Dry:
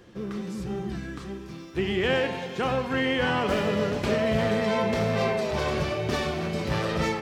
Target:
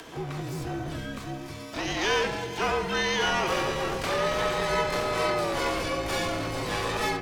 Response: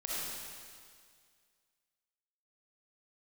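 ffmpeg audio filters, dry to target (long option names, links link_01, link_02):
-filter_complex "[0:a]highpass=frequency=99:poles=1,acrossover=split=480[link_01][link_02];[link_01]aeval=exprs='0.0282*(abs(mod(val(0)/0.0282+3,4)-2)-1)':channel_layout=same[link_03];[link_02]acompressor=mode=upward:threshold=-38dB:ratio=2.5[link_04];[link_03][link_04]amix=inputs=2:normalize=0,asplit=2[link_05][link_06];[link_06]asetrate=88200,aresample=44100,atempo=0.5,volume=-5dB[link_07];[link_05][link_07]amix=inputs=2:normalize=0,afreqshift=-56"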